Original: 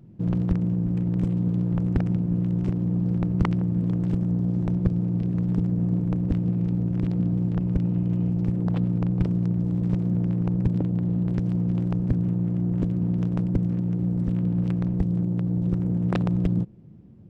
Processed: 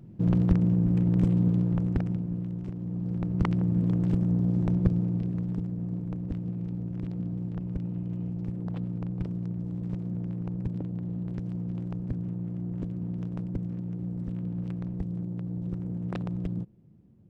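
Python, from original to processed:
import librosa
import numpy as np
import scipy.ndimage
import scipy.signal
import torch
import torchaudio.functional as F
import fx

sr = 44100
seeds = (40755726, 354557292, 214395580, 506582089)

y = fx.gain(x, sr, db=fx.line((1.42, 1.0), (2.69, -11.0), (3.68, -1.0), (4.9, -1.0), (5.71, -9.0)))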